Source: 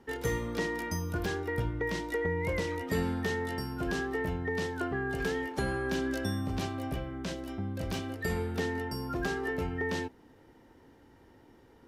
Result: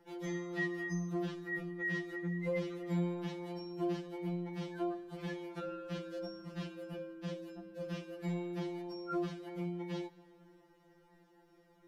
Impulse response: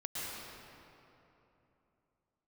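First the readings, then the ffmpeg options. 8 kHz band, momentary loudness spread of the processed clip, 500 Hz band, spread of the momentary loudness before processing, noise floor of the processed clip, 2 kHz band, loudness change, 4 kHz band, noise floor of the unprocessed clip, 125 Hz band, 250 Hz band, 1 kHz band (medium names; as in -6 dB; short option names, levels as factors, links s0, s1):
under -10 dB, 8 LU, -7.0 dB, 5 LU, -66 dBFS, -8.0 dB, -6.5 dB, -10.0 dB, -59 dBFS, -6.5 dB, -4.0 dB, -10.0 dB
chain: -filter_complex "[0:a]acrossover=split=4200[s0][s1];[s1]acompressor=threshold=0.001:ratio=4:attack=1:release=60[s2];[s0][s2]amix=inputs=2:normalize=0,asplit=2[s3][s4];[1:a]atrim=start_sample=2205,adelay=34[s5];[s4][s5]afir=irnorm=-1:irlink=0,volume=0.0708[s6];[s3][s6]amix=inputs=2:normalize=0,afftfilt=real='re*2.83*eq(mod(b,8),0)':imag='im*2.83*eq(mod(b,8),0)':win_size=2048:overlap=0.75,volume=0.631"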